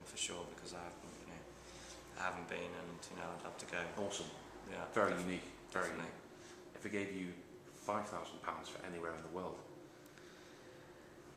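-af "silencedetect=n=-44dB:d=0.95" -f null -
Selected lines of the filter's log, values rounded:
silence_start: 10.18
silence_end: 11.37 | silence_duration: 1.19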